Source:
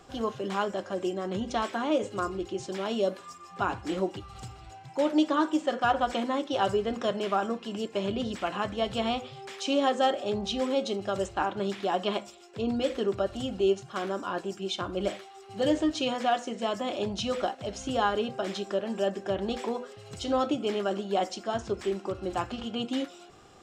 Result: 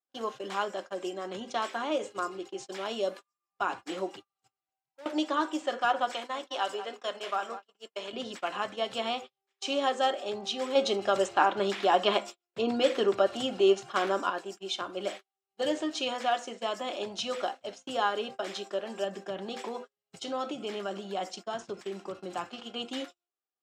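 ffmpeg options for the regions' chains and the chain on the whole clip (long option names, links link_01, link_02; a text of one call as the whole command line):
ffmpeg -i in.wav -filter_complex "[0:a]asettb=1/sr,asplit=3[link_01][link_02][link_03];[link_01]atrim=end=4.474[link_04];[link_02]atrim=start=4.47:end=5.06,asetpts=PTS-STARTPTS,afade=type=in:duration=0.004:curve=qsin,afade=type=out:start_time=0.586:duration=0.004:curve=qsin,asubboost=boost=12:cutoff=150,acompressor=threshold=-29dB:ratio=12:attack=3.2:release=140:knee=1:detection=peak,asoftclip=type=hard:threshold=-34dB[link_05];[link_03]atrim=start=5.056[link_06];[link_04][link_05]acrossfade=duration=0.004:curve1=hsin:curve2=qsin[link_07];[link_07][link_06]acrossfade=duration=0.004:curve1=qsin:curve2=hsin,asettb=1/sr,asplit=3[link_08][link_09][link_10];[link_08]atrim=end=6.124[link_11];[link_09]atrim=start=6.12:end=8.13,asetpts=PTS-STARTPTS,afade=type=in:duration=0.004:curve=qsin,afade=type=out:start_time=2.006:duration=0.004:curve=qsin,highpass=frequency=700:poles=1,asplit=2[link_12][link_13];[link_13]adelay=192,lowpass=frequency=2000:poles=1,volume=-11dB,asplit=2[link_14][link_15];[link_15]adelay=192,lowpass=frequency=2000:poles=1,volume=0.26,asplit=2[link_16][link_17];[link_17]adelay=192,lowpass=frequency=2000:poles=1,volume=0.26[link_18];[link_12][link_14][link_16][link_18]amix=inputs=4:normalize=0,atrim=end_sample=88641[link_19];[link_10]atrim=start=8.126[link_20];[link_11][link_19]acrossfade=duration=0.004:curve1=hsin:curve2=qsin[link_21];[link_21][link_20]acrossfade=duration=0.004:curve1=qsin:curve2=hsin,asettb=1/sr,asplit=3[link_22][link_23][link_24];[link_22]atrim=end=10.754[link_25];[link_23]atrim=start=10.75:end=14.3,asetpts=PTS-STARTPTS,afade=type=in:duration=0.004:curve=qsin,afade=type=out:start_time=3.546:duration=0.004:curve=qsin,acontrast=88,highshelf=frequency=5200:gain=-5.5[link_26];[link_24]atrim=start=14.296[link_27];[link_25][link_26]acrossfade=duration=0.004:curve1=hsin:curve2=qsin[link_28];[link_28][link_27]acrossfade=duration=0.004:curve1=qsin:curve2=hsin,asettb=1/sr,asplit=3[link_29][link_30][link_31];[link_29]atrim=end=19.044[link_32];[link_30]atrim=start=19.04:end=22.47,asetpts=PTS-STARTPTS,afade=type=in:duration=0.004:curve=qsin,afade=type=out:start_time=3.426:duration=0.004:curve=qsin,equalizer=frequency=170:width_type=o:width=0.5:gain=11.5,acompressor=threshold=-28dB:ratio=2:attack=3.2:release=140:knee=1:detection=peak[link_33];[link_31]atrim=start=22.466[link_34];[link_32][link_33]acrossfade=duration=0.004:curve1=hsin:curve2=qsin[link_35];[link_35][link_34]acrossfade=duration=0.004:curve1=qsin:curve2=hsin,agate=range=-43dB:threshold=-36dB:ratio=16:detection=peak,highpass=220,lowshelf=frequency=370:gain=-9.5" out.wav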